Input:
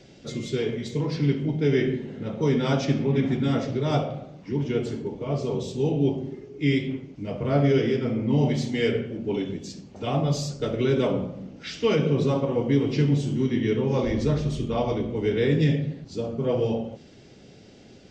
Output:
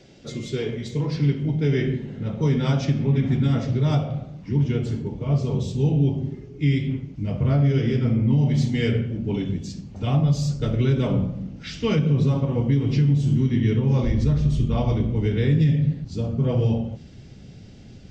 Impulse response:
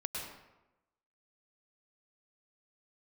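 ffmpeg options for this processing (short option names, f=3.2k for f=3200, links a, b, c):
-af "asubboost=boost=5:cutoff=170,alimiter=limit=-11.5dB:level=0:latency=1:release=184"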